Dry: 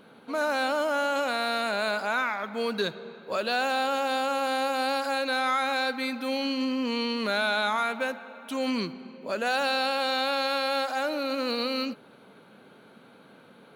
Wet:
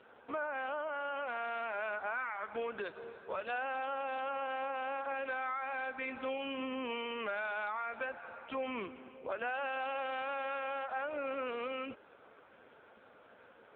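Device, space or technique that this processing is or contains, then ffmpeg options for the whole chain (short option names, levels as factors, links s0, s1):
voicemail: -af "highpass=440,lowpass=2900,acompressor=threshold=0.0224:ratio=8" -ar 8000 -c:a libopencore_amrnb -b:a 5900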